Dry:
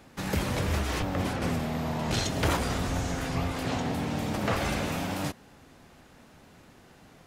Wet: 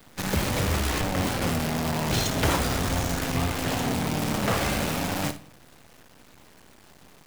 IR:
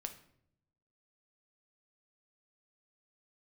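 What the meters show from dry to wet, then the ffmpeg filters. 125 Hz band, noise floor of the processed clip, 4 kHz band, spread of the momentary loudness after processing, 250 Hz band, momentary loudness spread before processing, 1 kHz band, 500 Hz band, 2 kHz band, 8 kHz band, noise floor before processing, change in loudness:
+3.0 dB, -53 dBFS, +5.0 dB, 3 LU, +3.0 dB, 4 LU, +3.5 dB, +3.0 dB, +4.0 dB, +7.0 dB, -55 dBFS, +4.0 dB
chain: -filter_complex "[0:a]acrusher=bits=6:dc=4:mix=0:aa=0.000001,asplit=2[s0][s1];[1:a]atrim=start_sample=2205,adelay=58[s2];[s1][s2]afir=irnorm=-1:irlink=0,volume=0.335[s3];[s0][s3]amix=inputs=2:normalize=0,volume=1.33"

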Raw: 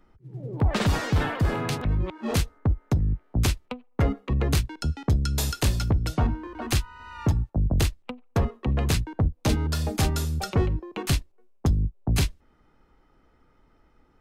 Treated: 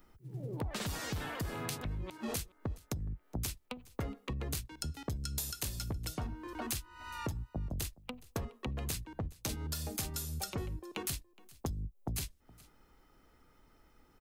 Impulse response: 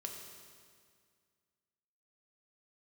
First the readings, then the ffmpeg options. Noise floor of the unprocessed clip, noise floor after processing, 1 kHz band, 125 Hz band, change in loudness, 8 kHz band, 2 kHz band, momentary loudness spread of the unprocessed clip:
-63 dBFS, -67 dBFS, -12.0 dB, -16.0 dB, -13.5 dB, -5.5 dB, -11.5 dB, 5 LU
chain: -filter_complex "[0:a]aemphasis=mode=production:type=75kf,acompressor=threshold=0.0251:ratio=6,asplit=2[s0][s1];[s1]aecho=0:1:418:0.075[s2];[s0][s2]amix=inputs=2:normalize=0,volume=0.631"

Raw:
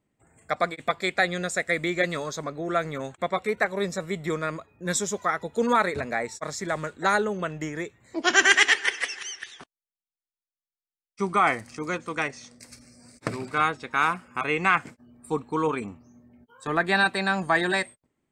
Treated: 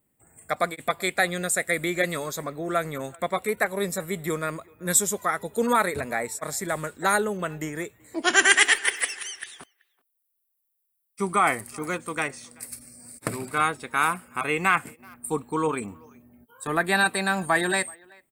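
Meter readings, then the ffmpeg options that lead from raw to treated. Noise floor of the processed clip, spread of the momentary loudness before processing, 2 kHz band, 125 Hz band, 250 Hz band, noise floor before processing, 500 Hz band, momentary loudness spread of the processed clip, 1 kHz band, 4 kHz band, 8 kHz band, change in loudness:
-76 dBFS, 12 LU, 0.0 dB, 0.0 dB, 0.0 dB, under -85 dBFS, 0.0 dB, 13 LU, 0.0 dB, 0.0 dB, +6.0 dB, +0.5 dB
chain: -filter_complex "[0:a]asplit=2[s0][s1];[s1]adelay=380,highpass=300,lowpass=3400,asoftclip=type=hard:threshold=0.2,volume=0.0501[s2];[s0][s2]amix=inputs=2:normalize=0,aexciter=amount=7.5:drive=7.2:freq=8600"

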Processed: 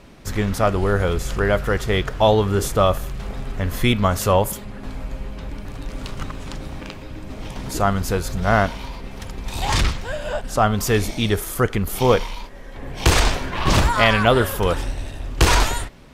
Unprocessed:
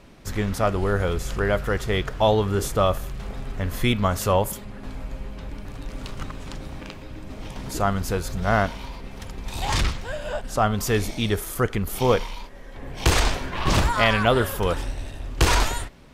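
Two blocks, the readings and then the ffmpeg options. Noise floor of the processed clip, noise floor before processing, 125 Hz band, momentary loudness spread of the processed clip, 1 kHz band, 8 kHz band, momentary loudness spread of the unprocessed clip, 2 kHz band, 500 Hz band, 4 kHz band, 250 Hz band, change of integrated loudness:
-36 dBFS, -40 dBFS, +3.5 dB, 17 LU, +3.5 dB, +3.5 dB, 17 LU, +3.5 dB, +3.5 dB, +3.5 dB, +3.5 dB, +3.5 dB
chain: -af "volume=1.5" -ar 48000 -c:a libopus -b:a 96k

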